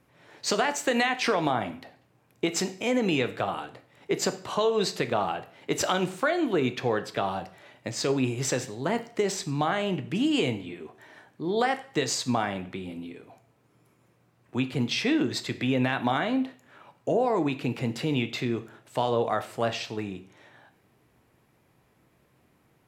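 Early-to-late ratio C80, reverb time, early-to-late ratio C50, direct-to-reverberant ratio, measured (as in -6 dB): 19.0 dB, 0.50 s, 14.5 dB, 9.5 dB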